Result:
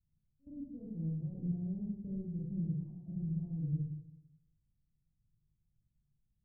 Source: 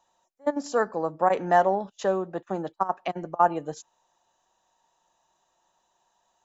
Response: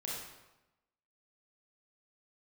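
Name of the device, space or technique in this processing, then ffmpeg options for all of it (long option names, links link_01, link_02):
club heard from the street: -filter_complex "[0:a]alimiter=limit=-17.5dB:level=0:latency=1:release=156,lowpass=frequency=130:width=0.5412,lowpass=frequency=130:width=1.3066[link_01];[1:a]atrim=start_sample=2205[link_02];[link_01][link_02]afir=irnorm=-1:irlink=0,volume=14.5dB"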